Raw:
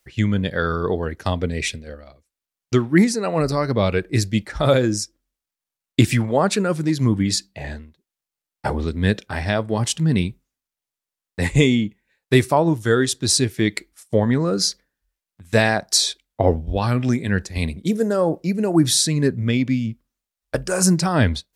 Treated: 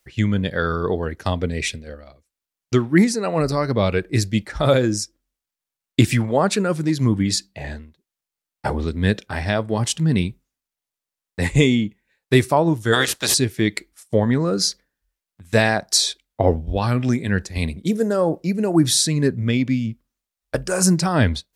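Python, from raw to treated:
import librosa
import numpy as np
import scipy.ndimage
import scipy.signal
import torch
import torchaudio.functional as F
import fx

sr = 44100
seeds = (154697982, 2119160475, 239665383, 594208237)

y = fx.spec_clip(x, sr, under_db=28, at=(12.92, 13.33), fade=0.02)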